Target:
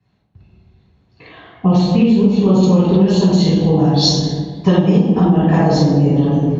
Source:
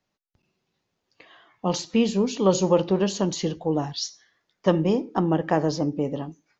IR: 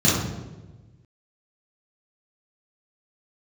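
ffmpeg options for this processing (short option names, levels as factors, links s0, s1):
-filter_complex "[1:a]atrim=start_sample=2205,asetrate=26901,aresample=44100[s0];[0:a][s0]afir=irnorm=-1:irlink=0,acompressor=threshold=0.794:ratio=6,asetnsamples=n=441:p=0,asendcmd='2.63 highshelf g 3;3.97 highshelf g 9',highshelf=f=3800:g=-9.5,volume=0.422"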